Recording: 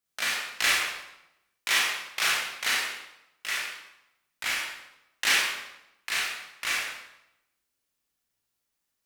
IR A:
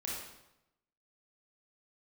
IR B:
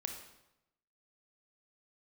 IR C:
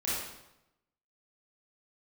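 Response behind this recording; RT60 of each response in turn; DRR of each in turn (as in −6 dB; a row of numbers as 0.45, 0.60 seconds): A; 0.85, 0.85, 0.85 seconds; −5.0, 4.0, −9.0 decibels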